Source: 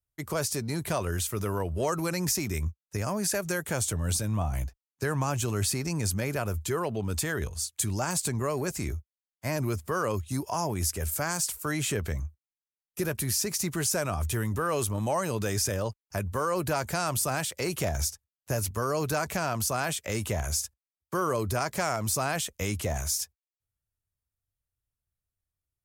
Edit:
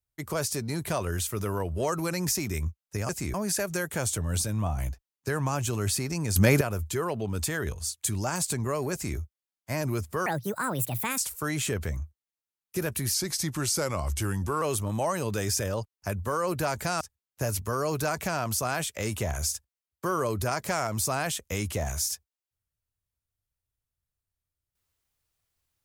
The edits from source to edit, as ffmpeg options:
-filter_complex "[0:a]asplit=10[a][b][c][d][e][f][g][h][i][j];[a]atrim=end=3.092[k];[b]atrim=start=8.668:end=8.922[l];[c]atrim=start=3.088:end=6.112[m];[d]atrim=start=6.108:end=6.362,asetpts=PTS-STARTPTS,volume=10.5dB[n];[e]atrim=start=6.358:end=10.014[o];[f]atrim=start=10.01:end=11.41,asetpts=PTS-STARTPTS,asetrate=67032,aresample=44100,atrim=end_sample=40618,asetpts=PTS-STARTPTS[p];[g]atrim=start=11.406:end=13.374[q];[h]atrim=start=13.37:end=14.7,asetpts=PTS-STARTPTS,asetrate=39690,aresample=44100[r];[i]atrim=start=14.696:end=17.092[s];[j]atrim=start=18.098[t];[k][l]acrossfade=d=0.004:c1=hsin:c2=hsin[u];[u][m]acrossfade=d=0.004:c1=hsin:c2=hsin[v];[v][n]acrossfade=d=0.004:c1=hsin:c2=hsin[w];[w][o]acrossfade=d=0.004:c1=hsin:c2=hsin[x];[x][p]acrossfade=d=0.004:c1=hsin:c2=hsin[y];[y][q]acrossfade=d=0.004:c1=hsin:c2=hsin[z];[z][r]acrossfade=d=0.004:c1=hsin:c2=hsin[aa];[aa][s]acrossfade=d=0.004:c1=hsin:c2=hsin[ab];[ab][t]acrossfade=d=0.004:c1=hsin:c2=hsin"

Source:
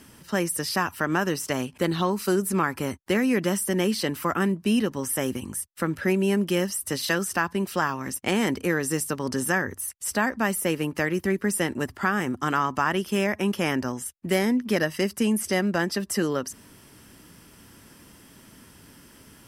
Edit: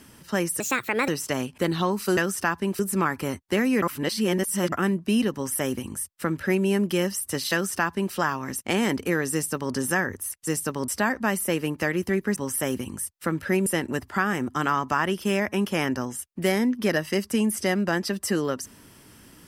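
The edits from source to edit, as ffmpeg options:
-filter_complex "[0:a]asplit=11[a][b][c][d][e][f][g][h][i][j][k];[a]atrim=end=0.604[l];[b]atrim=start=0.6:end=1.28,asetpts=PTS-STARTPTS,asetrate=62181,aresample=44100,atrim=end_sample=21268,asetpts=PTS-STARTPTS[m];[c]atrim=start=1.276:end=2.372[n];[d]atrim=start=7.098:end=7.722[o];[e]atrim=start=2.368:end=3.402[p];[f]atrim=start=3.398:end=4.302,asetpts=PTS-STARTPTS,areverse[q];[g]atrim=start=4.298:end=10.052[r];[h]atrim=start=8.908:end=9.322[s];[i]atrim=start=10.048:end=11.532[t];[j]atrim=start=4.918:end=6.222[u];[k]atrim=start=11.528[v];[l][m]acrossfade=d=0.004:c1=hsin:c2=hsin[w];[w][n]acrossfade=d=0.004:c1=hsin:c2=hsin[x];[x][o]acrossfade=d=0.004:c1=hsin:c2=hsin[y];[y][p]acrossfade=d=0.004:c1=hsin:c2=hsin[z];[z][q]acrossfade=d=0.004:c1=hsin:c2=hsin[aa];[aa][r]acrossfade=d=0.004:c1=hsin:c2=hsin[ab];[ab][s]acrossfade=d=0.004:c1=hsin:c2=hsin[ac];[ac][t]acrossfade=d=0.004:c1=hsin:c2=hsin[ad];[ad][u]acrossfade=d=0.004:c1=hsin:c2=hsin[ae];[ae][v]acrossfade=d=0.004:c1=hsin:c2=hsin"

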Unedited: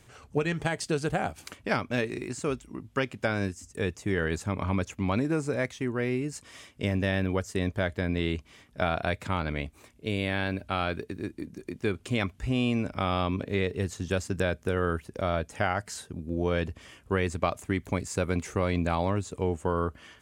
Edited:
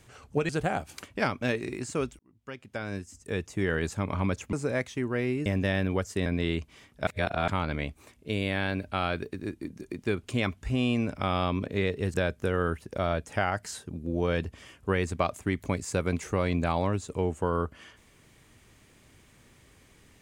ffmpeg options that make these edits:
-filter_complex "[0:a]asplit=9[a][b][c][d][e][f][g][h][i];[a]atrim=end=0.492[j];[b]atrim=start=0.978:end=2.68,asetpts=PTS-STARTPTS,afade=t=out:st=1.698:d=0.004:c=hsin[k];[c]atrim=start=2.68:end=5.022,asetpts=PTS-STARTPTS,afade=t=in:d=1.42[l];[d]atrim=start=5.368:end=6.302[m];[e]atrim=start=6.848:end=7.652[n];[f]atrim=start=8.028:end=8.842[o];[g]atrim=start=8.838:end=9.252,asetpts=PTS-STARTPTS,areverse[p];[h]atrim=start=9.248:end=13.912[q];[i]atrim=start=14.368[r];[k][l]concat=n=2:v=0:a=1[s];[j][s]acrossfade=d=0.004:c1=hsin:c2=hsin[t];[t][m]acrossfade=d=0.004:c1=hsin:c2=hsin[u];[u][n]acrossfade=d=0.004:c1=hsin:c2=hsin[v];[v][o]acrossfade=d=0.004:c1=hsin:c2=hsin[w];[w][p]acrossfade=d=0.004:c1=hsin:c2=hsin[x];[x][q]acrossfade=d=0.004:c1=hsin:c2=hsin[y];[y][r]acrossfade=d=0.004:c1=hsin:c2=hsin"

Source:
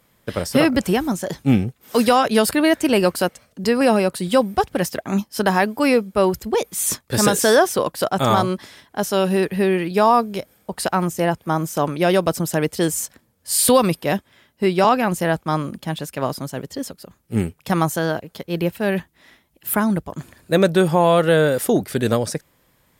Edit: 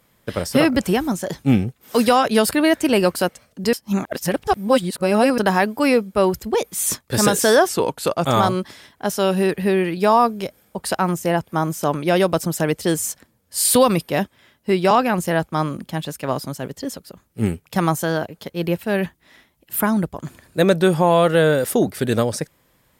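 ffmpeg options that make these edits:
-filter_complex "[0:a]asplit=5[a][b][c][d][e];[a]atrim=end=3.732[f];[b]atrim=start=3.728:end=5.382,asetpts=PTS-STARTPTS,areverse[g];[c]atrim=start=5.378:end=7.694[h];[d]atrim=start=7.69:end=8.2,asetpts=PTS-STARTPTS,asetrate=39249,aresample=44100[i];[e]atrim=start=8.196[j];[f][g]acrossfade=d=0.004:c1=hsin:c2=hsin[k];[k][h]acrossfade=d=0.004:c1=hsin:c2=hsin[l];[l][i]acrossfade=d=0.004:c1=hsin:c2=hsin[m];[m][j]acrossfade=d=0.004:c1=hsin:c2=hsin"

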